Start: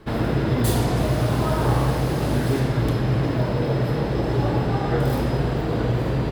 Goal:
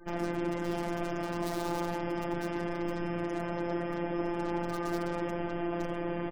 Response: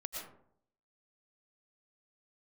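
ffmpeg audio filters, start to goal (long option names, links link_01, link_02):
-filter_complex "[0:a]bandreject=frequency=60:width_type=h:width=6,bandreject=frequency=120:width_type=h:width=6,bandreject=frequency=180:width_type=h:width=6,bandreject=frequency=240:width_type=h:width=6,bandreject=frequency=300:width_type=h:width=6,bandreject=frequency=360:width_type=h:width=6,bandreject=frequency=420:width_type=h:width=6,aecho=1:1:3.3:0.94,aresample=11025,asoftclip=type=tanh:threshold=-20.5dB,aresample=44100,asuperstop=centerf=4100:order=4:qfactor=1.9,acrossover=split=1200[link_01][link_02];[link_02]aeval=exprs='(mod(31.6*val(0)+1,2)-1)/31.6':channel_layout=same[link_03];[link_01][link_03]amix=inputs=2:normalize=0,afftfilt=real='hypot(re,im)*cos(PI*b)':imag='0':win_size=1024:overlap=0.75,afftfilt=real='re*gte(hypot(re,im),0.00251)':imag='im*gte(hypot(re,im),0.00251)':win_size=1024:overlap=0.75,volume=-4dB"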